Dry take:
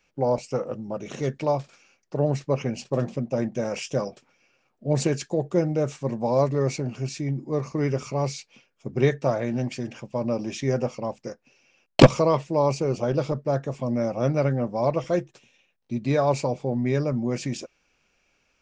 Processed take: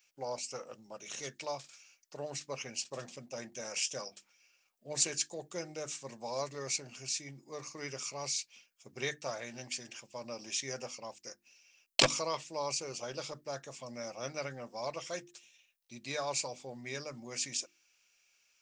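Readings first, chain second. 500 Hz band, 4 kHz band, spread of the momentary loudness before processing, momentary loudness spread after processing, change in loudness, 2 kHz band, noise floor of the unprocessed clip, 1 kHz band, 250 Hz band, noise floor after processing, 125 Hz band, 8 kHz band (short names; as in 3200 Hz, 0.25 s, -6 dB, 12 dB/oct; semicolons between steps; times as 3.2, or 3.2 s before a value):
-16.5 dB, +0.5 dB, 10 LU, 14 LU, -12.0 dB, -5.5 dB, -70 dBFS, -12.0 dB, -22.0 dB, -74 dBFS, -24.0 dB, +4.5 dB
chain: pre-emphasis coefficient 0.97; notches 50/100/150/200/250/300/350 Hz; gain +5.5 dB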